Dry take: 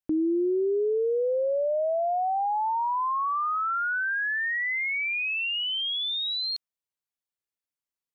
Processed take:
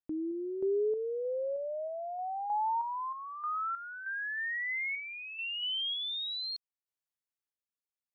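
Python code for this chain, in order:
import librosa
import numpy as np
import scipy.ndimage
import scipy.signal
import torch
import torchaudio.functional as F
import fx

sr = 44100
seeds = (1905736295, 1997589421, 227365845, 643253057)

y = fx.lowpass(x, sr, hz=1900.0, slope=12, at=(4.95, 5.39))
y = fx.tremolo_random(y, sr, seeds[0], hz=3.2, depth_pct=75)
y = y * librosa.db_to_amplitude(-4.0)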